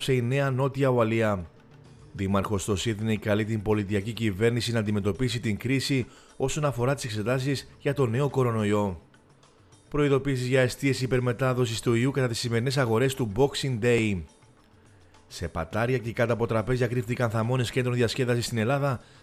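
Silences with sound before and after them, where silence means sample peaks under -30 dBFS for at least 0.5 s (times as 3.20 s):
1.42–2.19 s
8.94–9.92 s
14.21–15.34 s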